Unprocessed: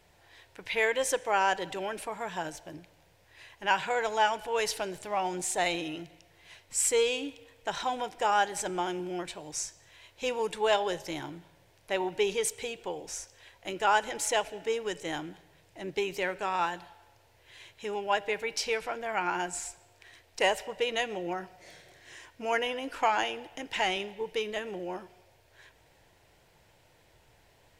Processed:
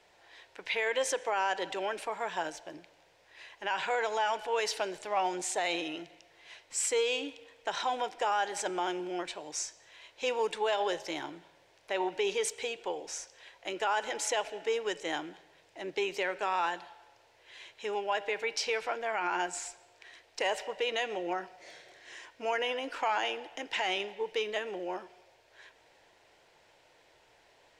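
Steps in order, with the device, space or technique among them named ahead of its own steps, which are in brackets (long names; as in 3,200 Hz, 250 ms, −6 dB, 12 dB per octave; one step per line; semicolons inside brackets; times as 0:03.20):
DJ mixer with the lows and highs turned down (three-way crossover with the lows and the highs turned down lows −15 dB, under 290 Hz, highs −14 dB, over 7,800 Hz; brickwall limiter −22.5 dBFS, peak gain reduction 10 dB)
level +1.5 dB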